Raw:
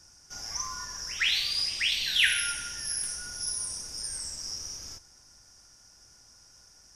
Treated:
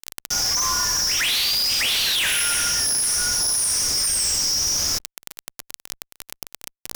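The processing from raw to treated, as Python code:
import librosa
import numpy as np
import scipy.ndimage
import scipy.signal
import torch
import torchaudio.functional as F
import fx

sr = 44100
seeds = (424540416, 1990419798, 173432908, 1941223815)

y = fx.high_shelf(x, sr, hz=2900.0, db=5.5)
y = fx.fuzz(y, sr, gain_db=43.0, gate_db=-42.0)
y = fx.env_flatten(y, sr, amount_pct=70)
y = y * librosa.db_to_amplitude(-7.0)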